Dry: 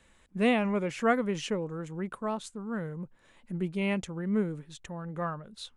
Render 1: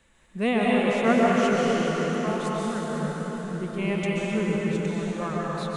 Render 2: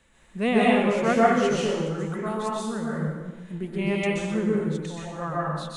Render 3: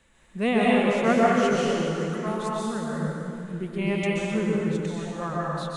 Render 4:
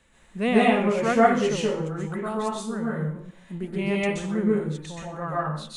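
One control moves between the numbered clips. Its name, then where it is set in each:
dense smooth reverb, RT60: 5.3, 1.2, 2.5, 0.55 seconds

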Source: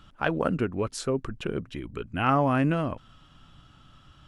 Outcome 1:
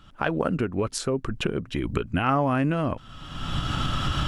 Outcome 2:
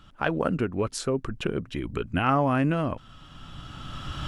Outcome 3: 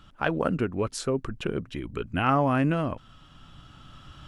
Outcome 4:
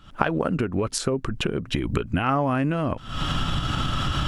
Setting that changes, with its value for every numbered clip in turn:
camcorder AGC, rising by: 36, 14, 5, 89 dB per second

